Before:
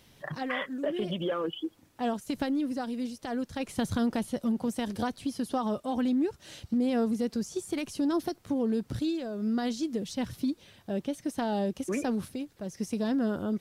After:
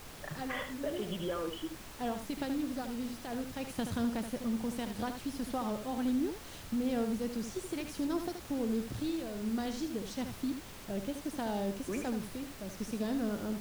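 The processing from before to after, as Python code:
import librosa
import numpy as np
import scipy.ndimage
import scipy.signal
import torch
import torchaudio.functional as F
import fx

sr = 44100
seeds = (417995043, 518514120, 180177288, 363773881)

y = fx.dmg_noise_colour(x, sr, seeds[0], colour='pink', level_db=-43.0)
y = y + 10.0 ** (-8.0 / 20.0) * np.pad(y, (int(76 * sr / 1000.0), 0))[:len(y)]
y = F.gain(torch.from_numpy(y), -6.0).numpy()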